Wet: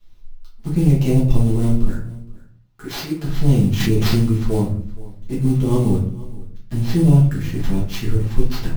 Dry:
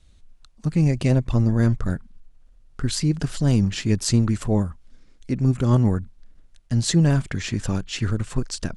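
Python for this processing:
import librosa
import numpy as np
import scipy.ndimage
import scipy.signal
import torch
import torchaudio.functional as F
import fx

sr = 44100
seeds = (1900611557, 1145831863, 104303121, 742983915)

y = fx.tracing_dist(x, sr, depth_ms=0.054)
y = fx.highpass(y, sr, hz=fx.line((1.87, 630.0), (3.23, 260.0)), slope=6, at=(1.87, 3.23), fade=0.02)
y = fx.high_shelf(y, sr, hz=3100.0, db=-11.5, at=(6.73, 7.54))
y = fx.quant_float(y, sr, bits=4)
y = fx.env_flanger(y, sr, rest_ms=10.0, full_db=-18.5)
y = fx.sample_hold(y, sr, seeds[0], rate_hz=9200.0, jitter_pct=20)
y = y + 10.0 ** (-20.5 / 20.0) * np.pad(y, (int(469 * sr / 1000.0), 0))[:len(y)]
y = fx.room_shoebox(y, sr, seeds[1], volume_m3=50.0, walls='mixed', distance_m=1.3)
y = fx.env_flatten(y, sr, amount_pct=70, at=(3.8, 4.22))
y = F.gain(torch.from_numpy(y), -4.0).numpy()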